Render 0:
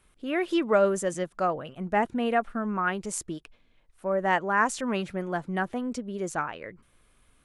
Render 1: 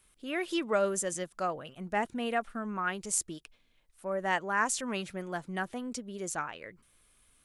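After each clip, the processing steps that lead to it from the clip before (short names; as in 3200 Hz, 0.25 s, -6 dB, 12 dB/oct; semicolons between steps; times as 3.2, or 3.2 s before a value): high shelf 3000 Hz +12 dB; gain -7 dB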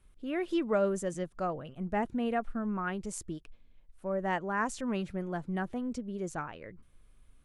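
tilt -3 dB/oct; gain -2.5 dB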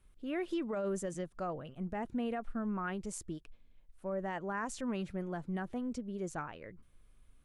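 limiter -25.5 dBFS, peak gain reduction 9.5 dB; gain -2.5 dB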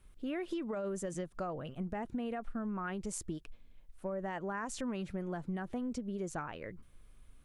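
compressor, threshold -39 dBFS, peak gain reduction 7.5 dB; gain +4.5 dB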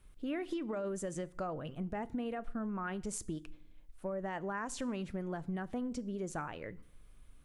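FDN reverb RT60 0.58 s, low-frequency decay 1.5×, high-frequency decay 0.9×, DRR 17 dB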